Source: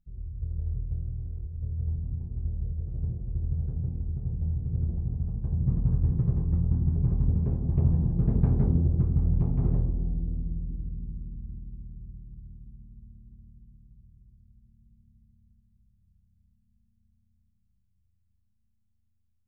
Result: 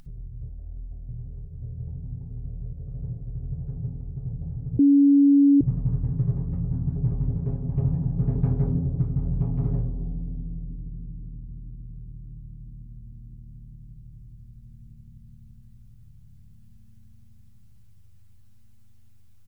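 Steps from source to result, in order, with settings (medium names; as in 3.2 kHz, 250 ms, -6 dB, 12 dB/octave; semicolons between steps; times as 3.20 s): comb 7.3 ms, depth 77%; upward compressor, threshold -30 dBFS; 0.49–1.09 s: static phaser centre 690 Hz, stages 8; 4.79–5.61 s: bleep 282 Hz -10.5 dBFS; trim -2 dB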